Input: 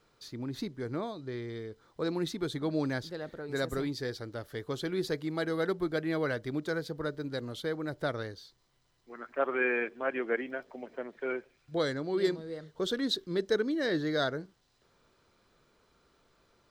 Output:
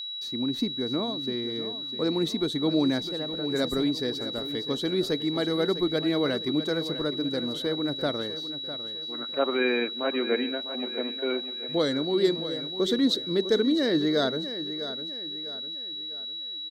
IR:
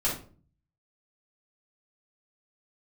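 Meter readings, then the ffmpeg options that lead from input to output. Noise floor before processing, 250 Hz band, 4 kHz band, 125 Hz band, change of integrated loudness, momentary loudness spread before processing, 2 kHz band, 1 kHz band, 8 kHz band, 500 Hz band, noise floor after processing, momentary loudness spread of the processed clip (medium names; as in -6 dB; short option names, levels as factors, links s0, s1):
-71 dBFS, +8.0 dB, +14.0 dB, +2.5 dB, +6.0 dB, 11 LU, +0.5 dB, +2.5 dB, +4.0 dB, +5.0 dB, -36 dBFS, 9 LU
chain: -filter_complex "[0:a]equalizer=f=100:t=o:w=0.67:g=-11,equalizer=f=250:t=o:w=0.67:g=7,equalizer=f=1600:t=o:w=0.67:g=-5,agate=range=0.0224:threshold=0.00141:ratio=3:detection=peak,aeval=exprs='val(0)+0.0141*sin(2*PI*3900*n/s)':c=same,asplit=2[s0][s1];[s1]aecho=0:1:652|1304|1956|2608:0.251|0.105|0.0443|0.0186[s2];[s0][s2]amix=inputs=2:normalize=0,volume=1.58"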